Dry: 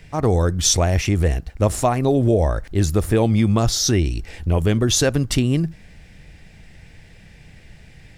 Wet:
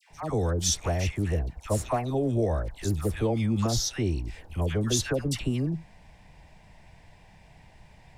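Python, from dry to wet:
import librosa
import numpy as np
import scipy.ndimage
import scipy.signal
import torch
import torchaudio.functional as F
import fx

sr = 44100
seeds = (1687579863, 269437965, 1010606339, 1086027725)

y = fx.dmg_noise_band(x, sr, seeds[0], low_hz=580.0, high_hz=1000.0, level_db=-54.0)
y = fx.dispersion(y, sr, late='lows', ms=103.0, hz=1200.0)
y = y * librosa.db_to_amplitude(-9.0)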